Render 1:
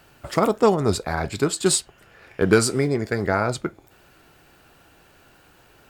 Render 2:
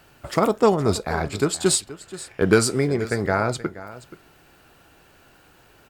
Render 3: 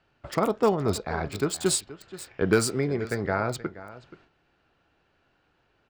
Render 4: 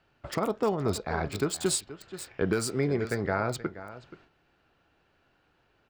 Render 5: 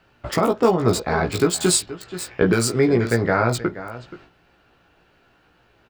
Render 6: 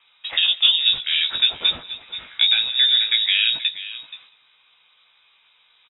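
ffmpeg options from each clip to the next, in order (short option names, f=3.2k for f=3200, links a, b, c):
-af "aecho=1:1:477:0.15"
-filter_complex "[0:a]agate=range=-9dB:threshold=-50dB:ratio=16:detection=peak,acrossover=split=790|5400[a][b][c];[c]acrusher=bits=5:mix=0:aa=0.000001[d];[a][b][d]amix=inputs=3:normalize=0,volume=-5dB"
-af "alimiter=limit=-15.5dB:level=0:latency=1:release=317"
-filter_complex "[0:a]asplit=2[a][b];[b]adelay=17,volume=-4dB[c];[a][c]amix=inputs=2:normalize=0,volume=8.5dB"
-filter_complex "[0:a]lowpass=f=3.3k:t=q:w=0.5098,lowpass=f=3.3k:t=q:w=0.6013,lowpass=f=3.3k:t=q:w=0.9,lowpass=f=3.3k:t=q:w=2.563,afreqshift=-3900,asplit=2[a][b];[b]adelay=195,lowpass=f=1.7k:p=1,volume=-17.5dB,asplit=2[c][d];[d]adelay=195,lowpass=f=1.7k:p=1,volume=0.47,asplit=2[e][f];[f]adelay=195,lowpass=f=1.7k:p=1,volume=0.47,asplit=2[g][h];[h]adelay=195,lowpass=f=1.7k:p=1,volume=0.47[i];[a][c][e][g][i]amix=inputs=5:normalize=0"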